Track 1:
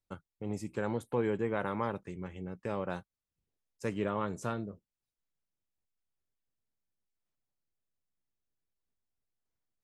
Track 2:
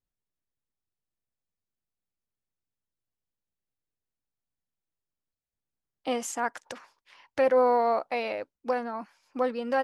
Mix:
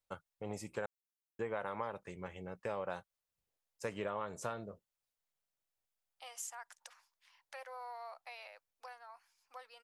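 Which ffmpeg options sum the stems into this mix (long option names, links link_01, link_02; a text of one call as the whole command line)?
ffmpeg -i stem1.wav -i stem2.wav -filter_complex "[0:a]lowshelf=frequency=420:width_type=q:width=1.5:gain=-7.5,volume=1dB,asplit=3[link_01][link_02][link_03];[link_01]atrim=end=0.86,asetpts=PTS-STARTPTS,afade=type=out:start_time=0.856:duration=0.004:curve=hsin[link_04];[link_02]atrim=start=0.86:end=1.39,asetpts=PTS-STARTPTS,volume=0[link_05];[link_03]atrim=start=1.39,asetpts=PTS-STARTPTS,afade=type=in:duration=0.004:curve=hsin[link_06];[link_04][link_05][link_06]concat=n=3:v=0:a=1[link_07];[1:a]highpass=frequency=720:width=0.5412,highpass=frequency=720:width=1.3066,acompressor=threshold=-37dB:ratio=1.5,crystalizer=i=2.5:c=0,adelay=150,volume=-15.5dB[link_08];[link_07][link_08]amix=inputs=2:normalize=0,acompressor=threshold=-35dB:ratio=6" out.wav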